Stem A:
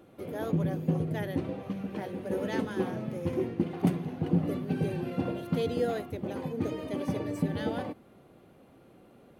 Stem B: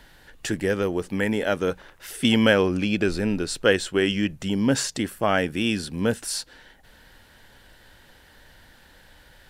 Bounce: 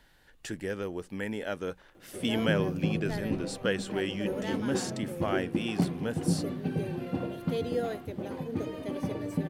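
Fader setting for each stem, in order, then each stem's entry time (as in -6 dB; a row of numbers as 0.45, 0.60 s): -1.5, -10.5 dB; 1.95, 0.00 s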